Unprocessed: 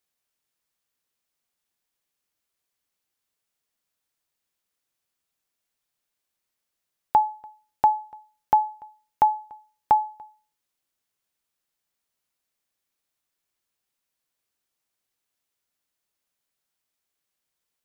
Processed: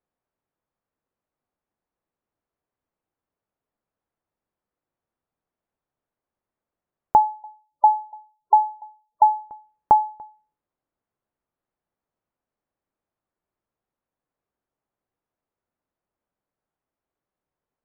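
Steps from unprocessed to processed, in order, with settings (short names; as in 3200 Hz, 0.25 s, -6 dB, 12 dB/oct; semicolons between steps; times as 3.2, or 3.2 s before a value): LPF 1000 Hz 12 dB/oct; 7.21–9.41 spectral gate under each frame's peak -20 dB strong; gain +5.5 dB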